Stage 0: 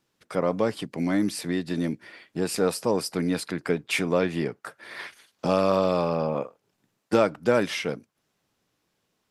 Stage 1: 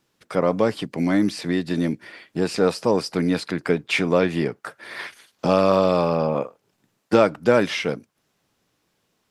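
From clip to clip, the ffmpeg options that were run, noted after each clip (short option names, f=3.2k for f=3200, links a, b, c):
-filter_complex "[0:a]acrossover=split=6400[a][b];[b]acompressor=threshold=-53dB:ratio=4:attack=1:release=60[c];[a][c]amix=inputs=2:normalize=0,volume=4.5dB"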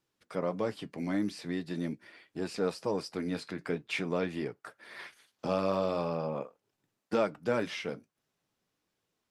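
-af "flanger=delay=2:depth=8.1:regen=-64:speed=0.44:shape=triangular,volume=-8dB"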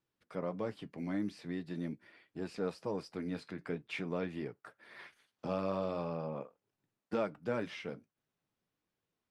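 -af "bass=f=250:g=3,treble=f=4k:g=-6,volume=-6dB"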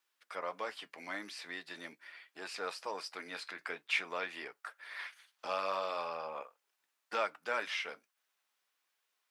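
-af "highpass=1.1k,volume=9.5dB"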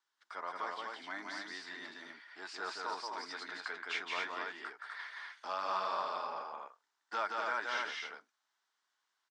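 -af "highpass=230,equalizer=f=520:t=q:w=4:g=-10,equalizer=f=940:t=q:w=4:g=4,equalizer=f=1.5k:t=q:w=4:g=3,equalizer=f=2.5k:t=q:w=4:g=-9,lowpass=f=7.3k:w=0.5412,lowpass=f=7.3k:w=1.3066,aecho=1:1:172|250.7:0.708|0.708,volume=-2dB"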